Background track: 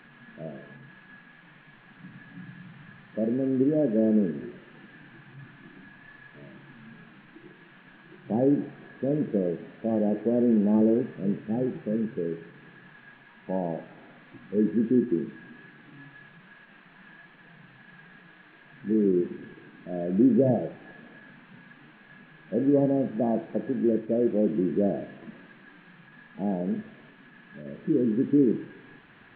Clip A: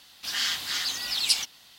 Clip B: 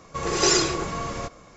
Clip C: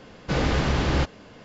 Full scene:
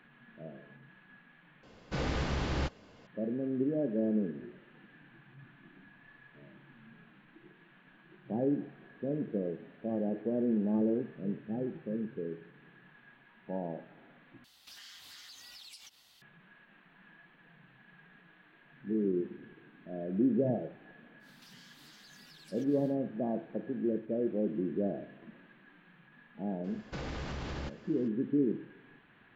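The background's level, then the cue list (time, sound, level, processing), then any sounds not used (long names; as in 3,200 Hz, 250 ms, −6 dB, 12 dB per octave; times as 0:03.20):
background track −8 dB
0:01.63: overwrite with C −10 dB
0:14.44: overwrite with A −9.5 dB + downward compressor 8 to 1, threshold −39 dBFS
0:21.19: mix in A −11.5 dB, fades 0.10 s + downward compressor 12 to 1, threshold −43 dBFS
0:26.64: mix in C −10 dB + downward compressor, threshold −25 dBFS
not used: B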